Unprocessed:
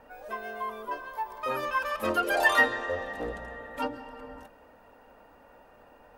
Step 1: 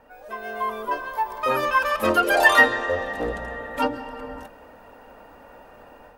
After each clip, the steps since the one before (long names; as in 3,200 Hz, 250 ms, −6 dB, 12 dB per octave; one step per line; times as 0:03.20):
automatic gain control gain up to 8.5 dB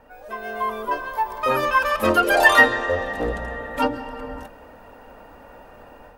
low-shelf EQ 140 Hz +5 dB
level +1.5 dB